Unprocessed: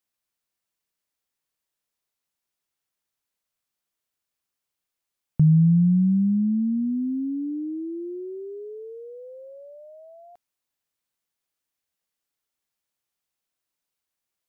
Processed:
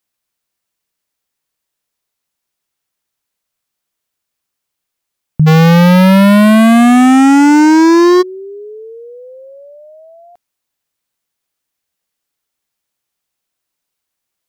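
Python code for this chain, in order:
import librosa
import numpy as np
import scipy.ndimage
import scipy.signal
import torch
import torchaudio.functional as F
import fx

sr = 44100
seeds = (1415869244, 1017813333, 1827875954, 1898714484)

y = fx.fuzz(x, sr, gain_db=42.0, gate_db=-50.0, at=(5.46, 8.21), fade=0.02)
y = y * librosa.db_to_amplitude(8.0)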